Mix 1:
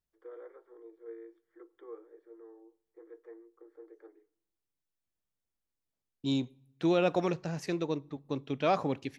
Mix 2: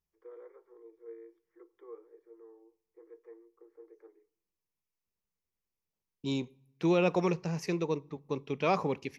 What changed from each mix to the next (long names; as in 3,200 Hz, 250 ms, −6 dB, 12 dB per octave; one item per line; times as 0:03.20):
first voice −4.0 dB
master: add EQ curve with evenly spaced ripples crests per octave 0.81, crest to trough 7 dB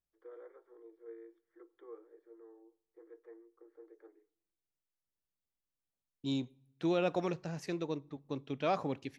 second voice −4.5 dB
master: remove EQ curve with evenly spaced ripples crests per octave 0.81, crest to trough 7 dB